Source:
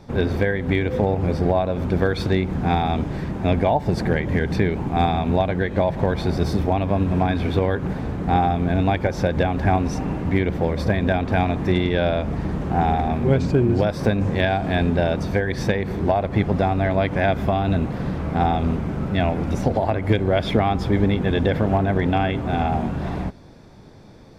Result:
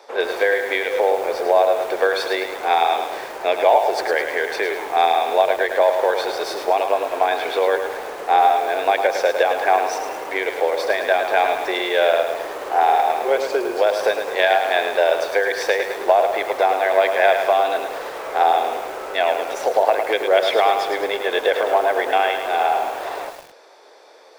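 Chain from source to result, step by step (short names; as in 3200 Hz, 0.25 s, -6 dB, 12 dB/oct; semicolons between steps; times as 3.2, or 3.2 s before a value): steep high-pass 440 Hz 36 dB/oct; lo-fi delay 0.106 s, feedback 55%, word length 7-bit, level -6.5 dB; gain +5.5 dB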